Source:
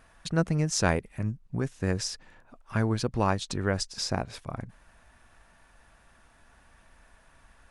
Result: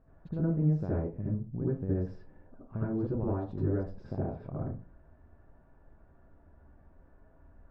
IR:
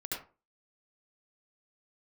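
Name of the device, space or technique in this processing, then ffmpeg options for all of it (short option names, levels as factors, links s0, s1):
television next door: -filter_complex "[0:a]acompressor=threshold=0.0398:ratio=6,lowpass=530[s0];[1:a]atrim=start_sample=2205[s1];[s0][s1]afir=irnorm=-1:irlink=0,volume=1.26"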